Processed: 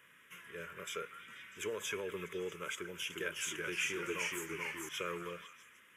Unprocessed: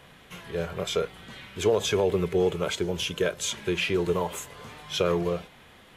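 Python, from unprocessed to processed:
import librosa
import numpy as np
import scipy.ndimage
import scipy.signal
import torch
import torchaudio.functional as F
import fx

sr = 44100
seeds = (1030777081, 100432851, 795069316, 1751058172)

y = fx.highpass(x, sr, hz=970.0, slope=6)
y = fx.fixed_phaser(y, sr, hz=1800.0, stages=4)
y = fx.echo_pitch(y, sr, ms=351, semitones=-1, count=2, db_per_echo=-3.0, at=(2.75, 4.89))
y = fx.echo_stepped(y, sr, ms=161, hz=1300.0, octaves=0.7, feedback_pct=70, wet_db=-7.5)
y = y * librosa.db_to_amplitude(-4.5)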